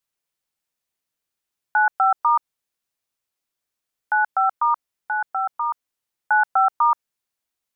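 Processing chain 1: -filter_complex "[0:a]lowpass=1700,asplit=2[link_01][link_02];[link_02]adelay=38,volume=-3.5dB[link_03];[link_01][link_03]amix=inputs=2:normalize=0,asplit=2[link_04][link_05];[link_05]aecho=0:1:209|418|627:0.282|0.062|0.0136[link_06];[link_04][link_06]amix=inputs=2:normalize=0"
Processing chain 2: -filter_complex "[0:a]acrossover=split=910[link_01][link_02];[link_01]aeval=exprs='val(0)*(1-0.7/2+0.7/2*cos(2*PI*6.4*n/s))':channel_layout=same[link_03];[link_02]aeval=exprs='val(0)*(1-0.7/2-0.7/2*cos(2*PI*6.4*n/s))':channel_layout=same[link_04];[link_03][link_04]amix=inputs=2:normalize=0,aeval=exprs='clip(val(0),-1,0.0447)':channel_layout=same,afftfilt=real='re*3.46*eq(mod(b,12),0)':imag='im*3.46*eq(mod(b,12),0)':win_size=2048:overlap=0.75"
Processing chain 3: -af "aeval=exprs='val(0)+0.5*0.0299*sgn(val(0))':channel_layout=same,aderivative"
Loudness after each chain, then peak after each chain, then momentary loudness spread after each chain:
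−20.5, −27.5, −31.0 LKFS; −6.0, −10.5, −21.5 dBFS; 12, 18, 1 LU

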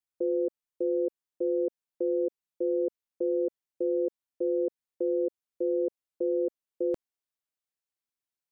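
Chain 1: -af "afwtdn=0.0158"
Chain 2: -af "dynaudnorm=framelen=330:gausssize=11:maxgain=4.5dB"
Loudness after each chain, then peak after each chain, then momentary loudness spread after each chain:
−31.5, −27.5 LKFS; −20.5, −16.5 dBFS; 5, 6 LU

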